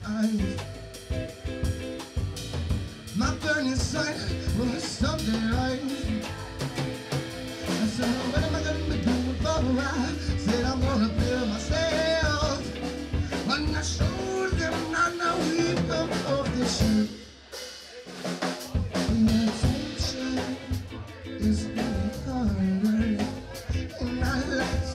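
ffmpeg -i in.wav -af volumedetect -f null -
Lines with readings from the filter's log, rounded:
mean_volume: -27.3 dB
max_volume: -11.9 dB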